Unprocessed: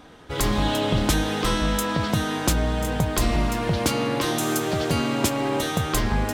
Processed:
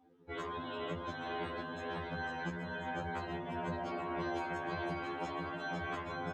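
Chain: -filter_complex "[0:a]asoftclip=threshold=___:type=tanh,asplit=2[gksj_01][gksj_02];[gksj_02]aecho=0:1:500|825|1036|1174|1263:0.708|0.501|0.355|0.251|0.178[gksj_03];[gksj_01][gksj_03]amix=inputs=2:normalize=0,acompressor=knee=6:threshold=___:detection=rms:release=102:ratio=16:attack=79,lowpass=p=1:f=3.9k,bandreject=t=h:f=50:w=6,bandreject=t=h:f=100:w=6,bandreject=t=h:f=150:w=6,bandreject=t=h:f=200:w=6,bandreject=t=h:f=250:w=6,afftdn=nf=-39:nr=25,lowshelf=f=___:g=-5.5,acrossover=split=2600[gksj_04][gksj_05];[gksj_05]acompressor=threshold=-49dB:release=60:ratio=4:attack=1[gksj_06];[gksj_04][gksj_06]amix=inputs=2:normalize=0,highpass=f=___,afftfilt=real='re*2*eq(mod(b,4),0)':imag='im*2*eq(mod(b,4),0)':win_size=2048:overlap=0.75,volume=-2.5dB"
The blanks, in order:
-20dB, -28dB, 230, 92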